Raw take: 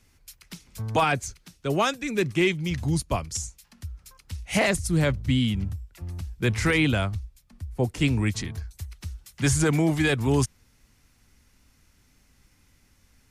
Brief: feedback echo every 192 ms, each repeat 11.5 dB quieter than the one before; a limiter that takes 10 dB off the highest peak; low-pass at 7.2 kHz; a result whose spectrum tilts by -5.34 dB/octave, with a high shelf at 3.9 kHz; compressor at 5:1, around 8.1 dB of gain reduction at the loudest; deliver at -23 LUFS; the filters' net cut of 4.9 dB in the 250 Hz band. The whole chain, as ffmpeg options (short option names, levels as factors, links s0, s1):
-af "lowpass=7200,equalizer=f=250:t=o:g=-7.5,highshelf=f=3900:g=-6,acompressor=threshold=0.0355:ratio=5,alimiter=level_in=1.58:limit=0.0631:level=0:latency=1,volume=0.631,aecho=1:1:192|384|576:0.266|0.0718|0.0194,volume=5.31"